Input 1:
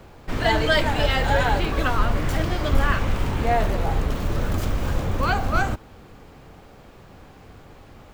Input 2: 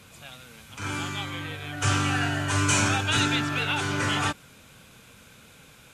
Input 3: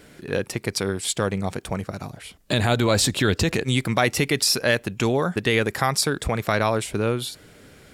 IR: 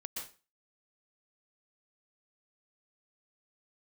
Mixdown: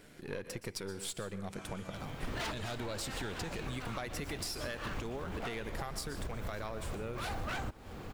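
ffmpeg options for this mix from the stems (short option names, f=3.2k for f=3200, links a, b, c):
-filter_complex "[0:a]aeval=exprs='0.112*(abs(mod(val(0)/0.112+3,4)-2)-1)':c=same,adelay=1950,volume=1dB[a];[1:a]acompressor=threshold=-29dB:ratio=6,adelay=750,volume=-15.5dB[b];[2:a]aeval=exprs='if(lt(val(0),0),0.447*val(0),val(0))':c=same,volume=-8dB,asplit=3[c][d][e];[d]volume=-7dB[f];[e]apad=whole_len=444756[g];[a][g]sidechaincompress=threshold=-42dB:ratio=8:attack=39:release=203[h];[3:a]atrim=start_sample=2205[i];[f][i]afir=irnorm=-1:irlink=0[j];[h][b][c][j]amix=inputs=4:normalize=0,acompressor=threshold=-37dB:ratio=5"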